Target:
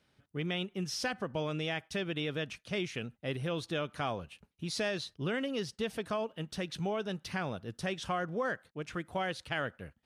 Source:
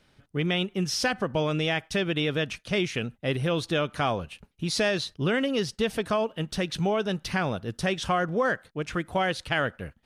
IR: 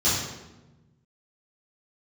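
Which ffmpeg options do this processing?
-af "highpass=59,volume=-8.5dB"

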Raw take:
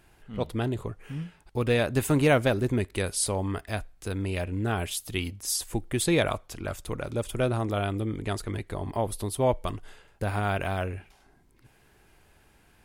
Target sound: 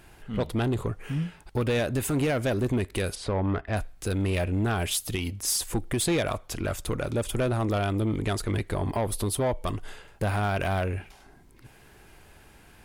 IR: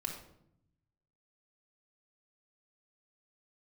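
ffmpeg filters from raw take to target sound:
-filter_complex "[0:a]asplit=3[a][b][c];[a]afade=t=out:st=3.14:d=0.02[d];[b]lowpass=2.2k,afade=t=in:st=3.14:d=0.02,afade=t=out:st=3.75:d=0.02[e];[c]afade=t=in:st=3.75:d=0.02[f];[d][e][f]amix=inputs=3:normalize=0,alimiter=limit=-20.5dB:level=0:latency=1:release=213,asoftclip=type=tanh:threshold=-26.5dB,volume=7dB"

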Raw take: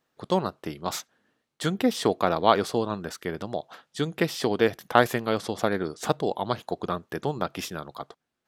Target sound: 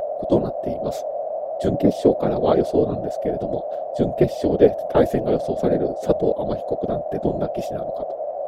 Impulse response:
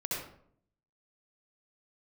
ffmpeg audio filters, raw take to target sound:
-af "lowshelf=f=710:t=q:w=1.5:g=12.5,aeval=exprs='val(0)+0.141*sin(2*PI*620*n/s)':c=same,afftfilt=real='hypot(re,im)*cos(2*PI*random(0))':imag='hypot(re,im)*sin(2*PI*random(1))':win_size=512:overlap=0.75,volume=-1.5dB"

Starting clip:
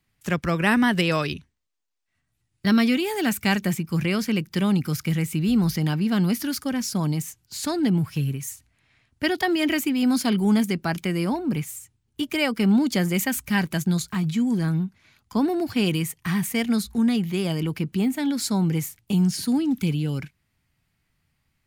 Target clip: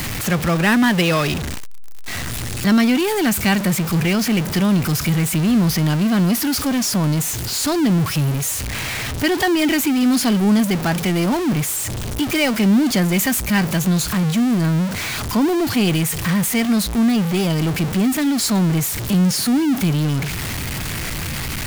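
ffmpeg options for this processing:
-af "aeval=exprs='val(0)+0.5*0.0891*sgn(val(0))':c=same,volume=2dB"

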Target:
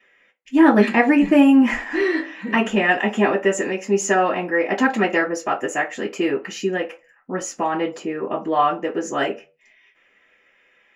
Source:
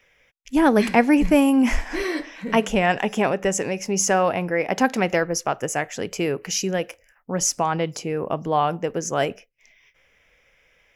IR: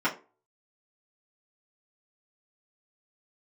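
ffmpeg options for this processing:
-filter_complex "[0:a]asettb=1/sr,asplit=3[a][b][c];[a]atrim=end=6.314[d];[b]atrim=start=6.31:end=8.49,asetpts=PTS-STARTPTS,afade=t=in:d=0.004:c=qsin,afade=t=out:st=2.176:d=0.004:c=qsin,equalizer=f=8.9k:w=0.31:g=-4[e];[c]atrim=start=8.486[f];[d][e]acrossfade=d=0.004:c1=hsin:c2=qsin[g];[g][f]acrossfade=d=0.004:c1=qsin:c2=hsin[h];[1:a]atrim=start_sample=2205,asetrate=57330,aresample=44100[i];[h][i]afir=irnorm=-1:irlink=0,volume=-7.5dB"

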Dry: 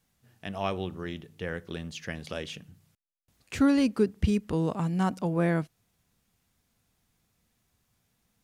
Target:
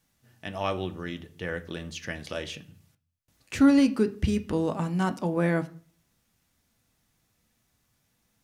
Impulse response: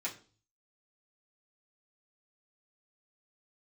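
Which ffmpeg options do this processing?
-filter_complex "[0:a]asplit=2[a][b];[1:a]atrim=start_sample=2205,asetrate=34839,aresample=44100[c];[b][c]afir=irnorm=-1:irlink=0,volume=-9dB[d];[a][d]amix=inputs=2:normalize=0"

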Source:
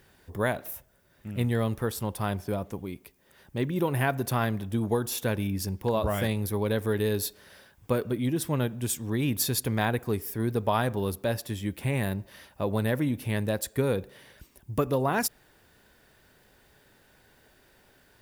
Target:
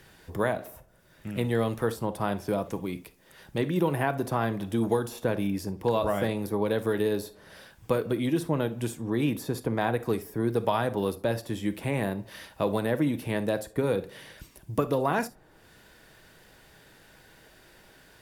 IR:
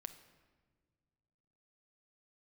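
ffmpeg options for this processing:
-filter_complex "[0:a]crystalizer=i=4:c=0,acrossover=split=200|1300[a][b][c];[a]acompressor=threshold=-42dB:ratio=4[d];[b]acompressor=threshold=-27dB:ratio=4[e];[c]acompressor=threshold=-36dB:ratio=4[f];[d][e][f]amix=inputs=3:normalize=0,aemphasis=mode=reproduction:type=75fm[g];[1:a]atrim=start_sample=2205,atrim=end_sample=3528[h];[g][h]afir=irnorm=-1:irlink=0,volume=8.5dB"

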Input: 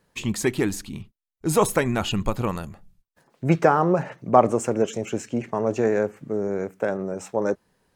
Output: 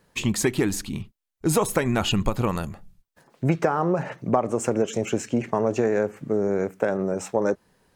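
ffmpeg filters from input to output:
-af "acompressor=threshold=-21dB:ratio=12,volume=4dB"

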